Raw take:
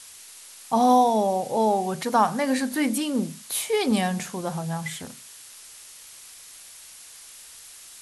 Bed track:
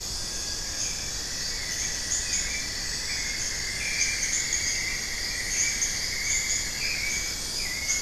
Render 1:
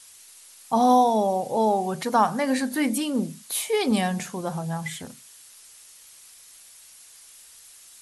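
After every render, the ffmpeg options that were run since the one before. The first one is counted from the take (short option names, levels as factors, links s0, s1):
-af "afftdn=nr=6:nf=-46"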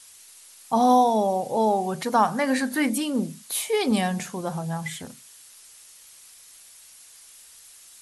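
-filter_complex "[0:a]asettb=1/sr,asplit=3[s0][s1][s2];[s0]atrim=end=2.374[s3];[s1]atrim=start=2.37:end=2.9,asetpts=PTS-STARTPTS,afade=t=in:d=0.004:c=qsin,afade=t=out:st=0.526:d=0.004:c=qsin,equalizer=f=1500:t=o:w=1.1:g=4.5[s4];[s2]atrim=start=2.896[s5];[s3][s4]acrossfade=d=0.004:c1=hsin:c2=qsin[s6];[s6][s5]acrossfade=d=0.004:c1=qsin:c2=hsin"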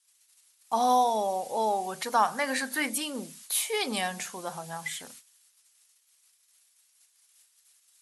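-af "agate=range=0.0794:threshold=0.00501:ratio=16:detection=peak,highpass=f=1000:p=1"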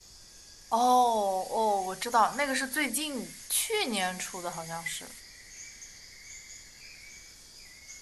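-filter_complex "[1:a]volume=0.0944[s0];[0:a][s0]amix=inputs=2:normalize=0"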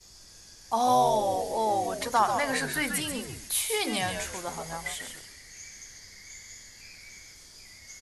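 -filter_complex "[0:a]asplit=5[s0][s1][s2][s3][s4];[s1]adelay=138,afreqshift=-110,volume=0.473[s5];[s2]adelay=276,afreqshift=-220,volume=0.151[s6];[s3]adelay=414,afreqshift=-330,volume=0.0484[s7];[s4]adelay=552,afreqshift=-440,volume=0.0155[s8];[s0][s5][s6][s7][s8]amix=inputs=5:normalize=0"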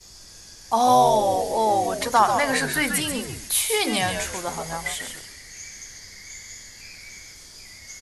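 -af "volume=2"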